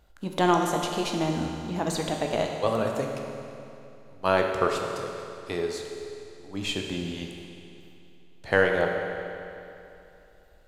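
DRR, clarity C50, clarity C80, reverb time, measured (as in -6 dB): 1.5 dB, 3.0 dB, 4.0 dB, 2.8 s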